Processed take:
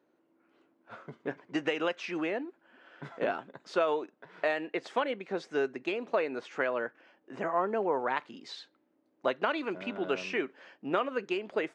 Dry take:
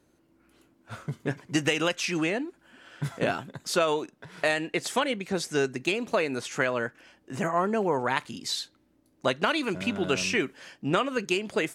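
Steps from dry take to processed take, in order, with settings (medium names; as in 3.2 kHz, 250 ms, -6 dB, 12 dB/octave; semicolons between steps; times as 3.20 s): high-pass 360 Hz 12 dB/octave; tape spacing loss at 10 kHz 32 dB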